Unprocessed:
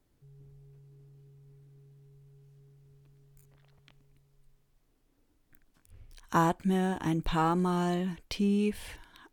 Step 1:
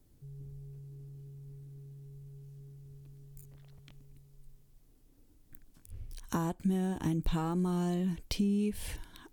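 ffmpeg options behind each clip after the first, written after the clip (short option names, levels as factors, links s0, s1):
-af "acompressor=threshold=0.0178:ratio=4,equalizer=f=1400:w=0.31:g=-11,volume=2.82"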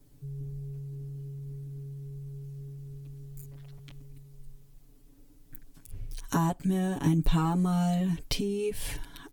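-af "aecho=1:1:7.1:0.97,volume=1.41"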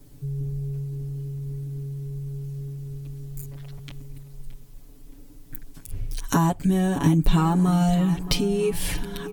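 -filter_complex "[0:a]asplit=2[s0][s1];[s1]acompressor=threshold=0.0178:ratio=6,volume=0.794[s2];[s0][s2]amix=inputs=2:normalize=0,asplit=2[s3][s4];[s4]adelay=621,lowpass=f=2500:p=1,volume=0.2,asplit=2[s5][s6];[s6]adelay=621,lowpass=f=2500:p=1,volume=0.47,asplit=2[s7][s8];[s8]adelay=621,lowpass=f=2500:p=1,volume=0.47,asplit=2[s9][s10];[s10]adelay=621,lowpass=f=2500:p=1,volume=0.47[s11];[s3][s5][s7][s9][s11]amix=inputs=5:normalize=0,volume=1.68"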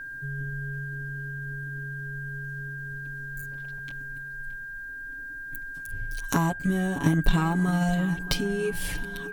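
-af "aeval=exprs='val(0)+0.0316*sin(2*PI*1600*n/s)':c=same,aeval=exprs='0.501*(cos(1*acos(clip(val(0)/0.501,-1,1)))-cos(1*PI/2))+0.0794*(cos(3*acos(clip(val(0)/0.501,-1,1)))-cos(3*PI/2))':c=same"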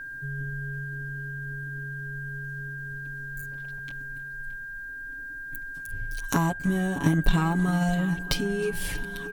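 -af "aecho=1:1:313:0.0668"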